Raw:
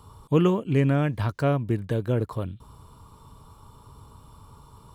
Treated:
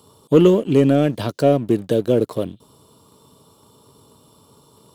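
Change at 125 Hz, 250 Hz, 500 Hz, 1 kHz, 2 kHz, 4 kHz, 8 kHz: +1.0 dB, +8.0 dB, +10.5 dB, +4.0 dB, +1.5 dB, +9.0 dB, n/a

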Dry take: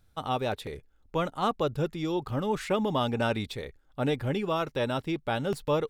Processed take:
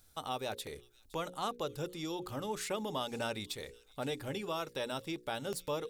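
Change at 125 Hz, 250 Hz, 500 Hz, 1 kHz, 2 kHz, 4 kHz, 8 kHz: -13.0, -11.0, -9.0, -8.5, -7.5, -3.5, +3.5 dB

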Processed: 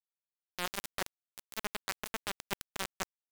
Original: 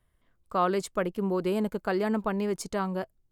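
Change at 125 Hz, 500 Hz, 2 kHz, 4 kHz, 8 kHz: -17.5, -18.5, -2.5, +3.0, +1.0 dB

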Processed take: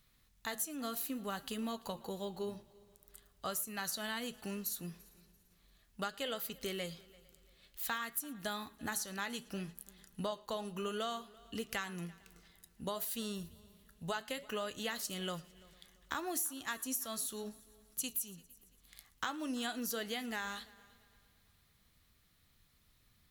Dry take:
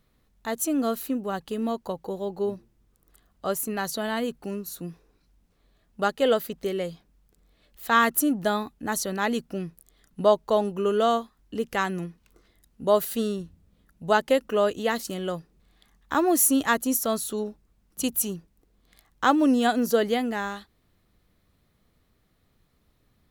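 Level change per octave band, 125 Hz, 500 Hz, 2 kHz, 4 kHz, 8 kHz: -10.5, -18.0, -11.5, -7.0, -10.0 dB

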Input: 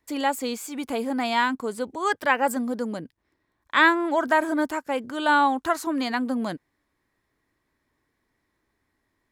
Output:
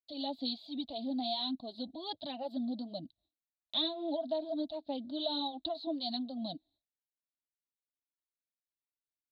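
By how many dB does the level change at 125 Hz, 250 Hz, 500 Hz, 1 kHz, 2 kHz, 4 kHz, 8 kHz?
-10.5 dB, -10.5 dB, -11.5 dB, -19.5 dB, -37.0 dB, -2.0 dB, under -40 dB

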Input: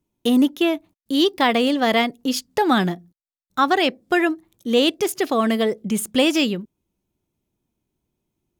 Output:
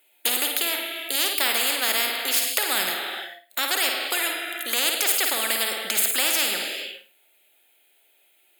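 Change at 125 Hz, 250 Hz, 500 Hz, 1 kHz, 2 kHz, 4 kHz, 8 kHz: under -20 dB, -21.0 dB, -12.0 dB, -8.5 dB, +0.5 dB, +2.0 dB, +10.0 dB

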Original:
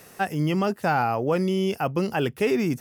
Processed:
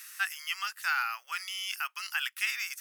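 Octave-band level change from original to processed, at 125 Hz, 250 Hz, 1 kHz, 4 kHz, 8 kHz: under -40 dB, under -40 dB, -10.5 dB, +3.0 dB, +4.5 dB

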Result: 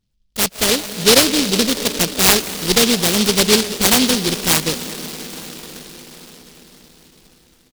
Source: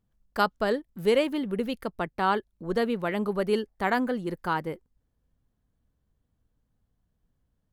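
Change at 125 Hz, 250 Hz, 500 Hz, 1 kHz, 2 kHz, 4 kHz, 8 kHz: +12.0 dB, +10.5 dB, +7.5 dB, +4.0 dB, +11.5 dB, +24.0 dB, n/a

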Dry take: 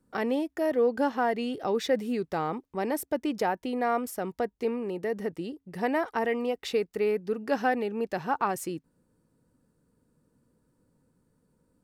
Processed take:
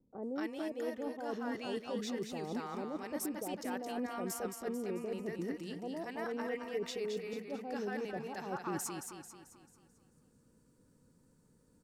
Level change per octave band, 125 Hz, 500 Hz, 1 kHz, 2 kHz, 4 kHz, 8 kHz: -6.0, -11.0, -13.0, -10.5, -6.5, -1.0 dB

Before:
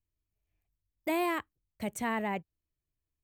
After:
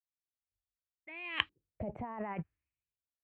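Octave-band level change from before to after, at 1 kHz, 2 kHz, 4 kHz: -8.5, -2.5, +6.5 dB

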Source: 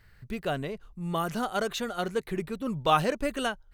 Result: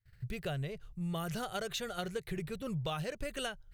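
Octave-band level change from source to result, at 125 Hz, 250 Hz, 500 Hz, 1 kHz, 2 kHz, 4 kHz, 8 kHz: -2.0, -7.5, -9.0, -13.5, -8.0, -5.5, -4.0 dB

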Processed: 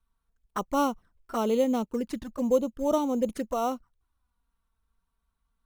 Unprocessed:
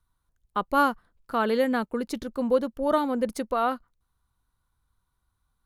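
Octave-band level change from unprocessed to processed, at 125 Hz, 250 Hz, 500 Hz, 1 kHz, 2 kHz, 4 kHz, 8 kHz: n/a, 0.0 dB, -1.0 dB, -5.0 dB, -12.5 dB, -3.5 dB, +3.5 dB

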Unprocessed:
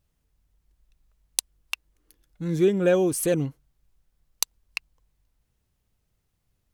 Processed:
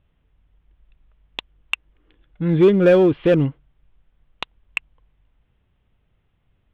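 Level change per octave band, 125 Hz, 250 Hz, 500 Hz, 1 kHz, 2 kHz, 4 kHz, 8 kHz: +8.0 dB, +7.5 dB, +7.0 dB, +7.0 dB, +7.0 dB, +2.0 dB, under -20 dB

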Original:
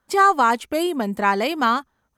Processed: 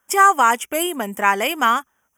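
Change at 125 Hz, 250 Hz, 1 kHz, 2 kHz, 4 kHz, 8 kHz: n/a, -3.5 dB, +2.0 dB, +4.0 dB, +3.5 dB, +11.0 dB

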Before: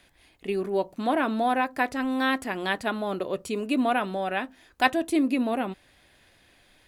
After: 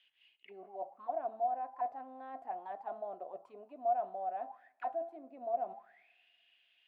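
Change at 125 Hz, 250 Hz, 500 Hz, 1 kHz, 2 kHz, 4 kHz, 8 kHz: under -30 dB, -30.5 dB, -11.0 dB, -8.5 dB, -29.5 dB, under -30 dB, under -35 dB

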